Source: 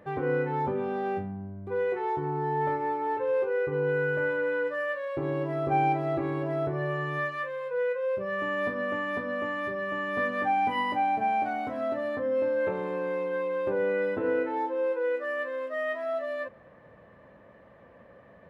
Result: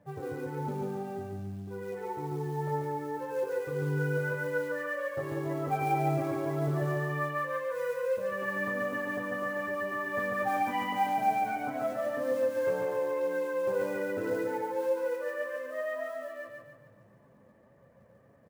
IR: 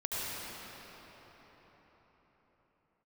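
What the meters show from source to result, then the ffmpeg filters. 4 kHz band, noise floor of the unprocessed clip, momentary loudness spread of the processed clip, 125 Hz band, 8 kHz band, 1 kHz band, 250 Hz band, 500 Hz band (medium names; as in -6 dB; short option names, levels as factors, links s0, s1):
-3.5 dB, -54 dBFS, 8 LU, +1.0 dB, no reading, -3.5 dB, -2.5 dB, -3.5 dB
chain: -filter_complex "[0:a]lowpass=f=2400:p=1,equalizer=f=140:w=0.58:g=8,acrossover=split=490[s0][s1];[s1]dynaudnorm=f=580:g=13:m=2.51[s2];[s0][s2]amix=inputs=2:normalize=0,flanger=delay=1.2:depth=6.4:regen=-31:speed=0.39:shape=triangular,acrusher=bits=6:mode=log:mix=0:aa=0.000001,flanger=delay=6.9:depth=2.9:regen=33:speed=1.8:shape=sinusoidal,asplit=2[s3][s4];[s4]aecho=0:1:143|286|429|572|715|858:0.708|0.319|0.143|0.0645|0.029|0.0131[s5];[s3][s5]amix=inputs=2:normalize=0,volume=0.631"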